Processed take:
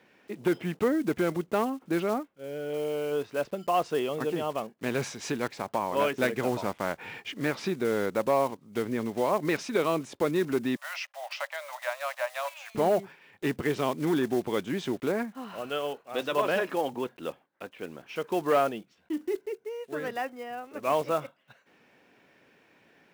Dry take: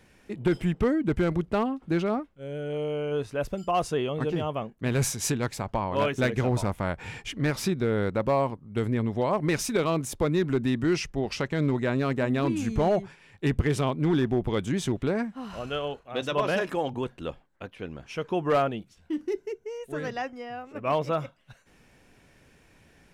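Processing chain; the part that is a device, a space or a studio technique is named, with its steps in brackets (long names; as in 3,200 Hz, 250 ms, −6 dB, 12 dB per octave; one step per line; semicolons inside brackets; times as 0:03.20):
early digital voice recorder (band-pass filter 250–3,800 Hz; one scale factor per block 5 bits)
0:10.76–0:12.75: Chebyshev high-pass filter 560 Hz, order 8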